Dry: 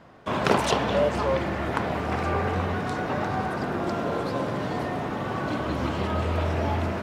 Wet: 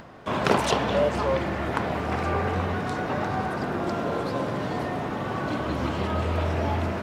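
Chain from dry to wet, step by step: upward compressor, threshold -39 dBFS

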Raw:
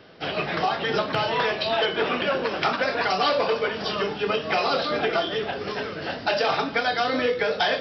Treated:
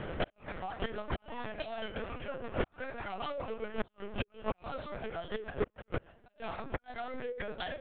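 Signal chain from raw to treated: local Wiener filter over 9 samples; resonant low shelf 150 Hz -6 dB, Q 3; inverted gate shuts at -18 dBFS, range -26 dB; Chebyshev shaper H 4 -34 dB, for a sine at -15.5 dBFS; inverted gate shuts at -27 dBFS, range -38 dB; LPC vocoder at 8 kHz pitch kept; trim +10 dB

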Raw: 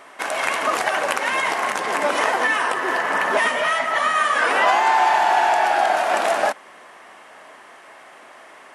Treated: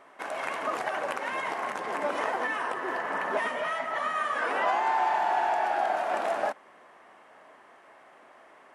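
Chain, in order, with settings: treble shelf 2.2 kHz -10.5 dB; trim -7.5 dB

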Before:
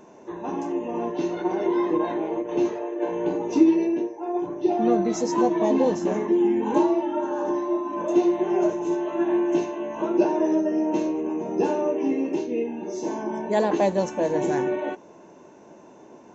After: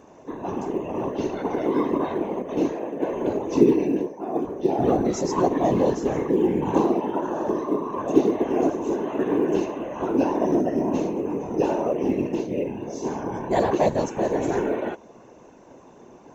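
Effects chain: whisper effect; short-mantissa float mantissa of 6-bit

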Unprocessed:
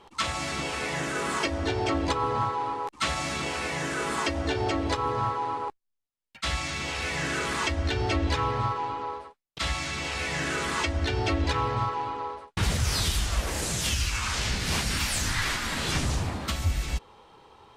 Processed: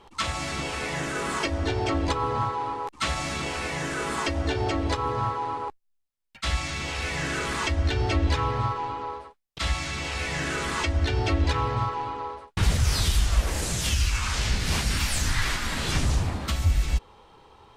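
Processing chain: bass shelf 67 Hz +10 dB

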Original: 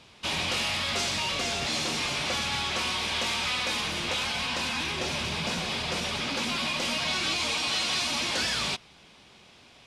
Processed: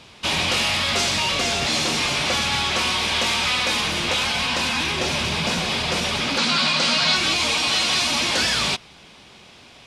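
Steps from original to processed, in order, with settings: 6.38–7.16 s: cabinet simulation 140–9200 Hz, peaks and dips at 160 Hz +5 dB, 350 Hz -4 dB, 1.4 kHz +7 dB, 4.3 kHz +8 dB; trim +7.5 dB

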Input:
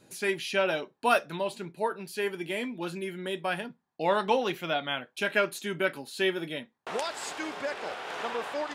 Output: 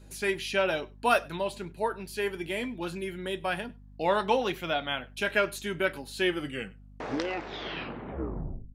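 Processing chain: tape stop on the ending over 2.58 s; hum 50 Hz, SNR 20 dB; echo from a far wall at 17 m, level -25 dB

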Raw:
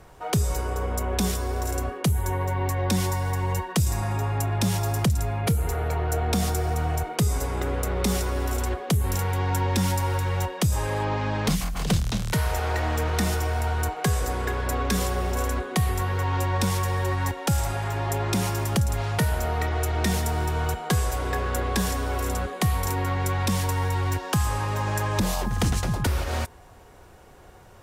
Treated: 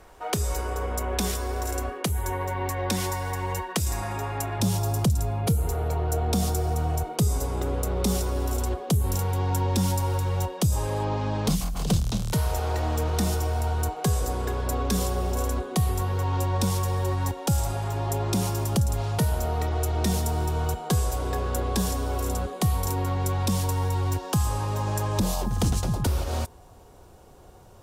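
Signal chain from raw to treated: peaking EQ 130 Hz -10 dB 1.1 oct, from 4.60 s 1.9 kHz

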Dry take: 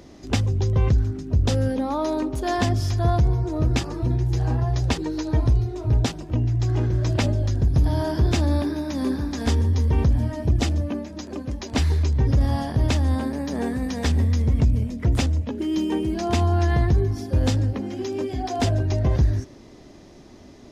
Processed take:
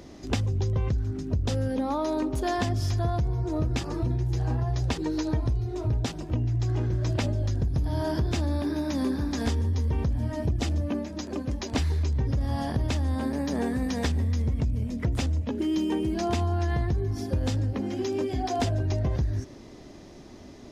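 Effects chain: compression, threshold -23 dBFS, peak gain reduction 9 dB

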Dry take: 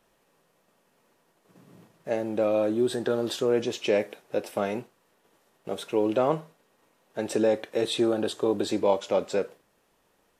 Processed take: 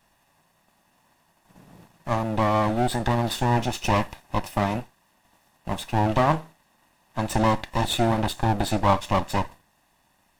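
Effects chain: comb filter that takes the minimum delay 1.1 ms; trim +5 dB

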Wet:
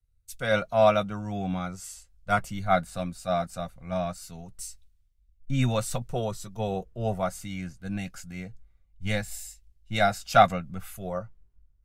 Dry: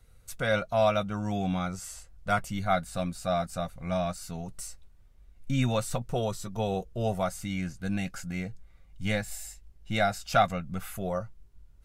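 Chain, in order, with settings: three bands expanded up and down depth 70%

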